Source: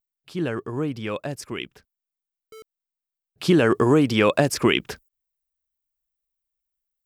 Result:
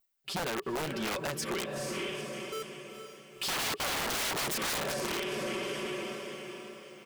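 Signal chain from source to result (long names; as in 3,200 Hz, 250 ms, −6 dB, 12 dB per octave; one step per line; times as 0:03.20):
0:00.62–0:01.62: mu-law and A-law mismatch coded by mu
comb filter 5.2 ms, depth 77%
feedback delay with all-pass diffusion 461 ms, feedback 41%, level −9.5 dB
wrap-around overflow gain 19 dB
low-shelf EQ 220 Hz −10 dB
downward compressor 4 to 1, threshold −36 dBFS, peak gain reduction 12 dB
soft clipping −36.5 dBFS, distortion −12 dB
level +7.5 dB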